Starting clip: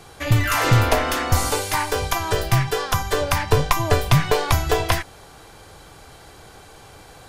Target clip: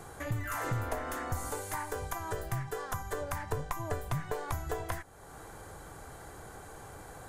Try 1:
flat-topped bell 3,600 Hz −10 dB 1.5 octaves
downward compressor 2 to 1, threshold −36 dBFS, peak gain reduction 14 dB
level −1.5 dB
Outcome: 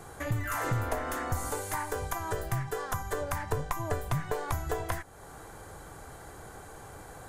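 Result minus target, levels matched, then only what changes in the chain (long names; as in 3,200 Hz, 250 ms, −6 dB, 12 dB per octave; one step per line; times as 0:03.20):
downward compressor: peak gain reduction −3 dB
change: downward compressor 2 to 1, threshold −42.5 dBFS, peak gain reduction 17 dB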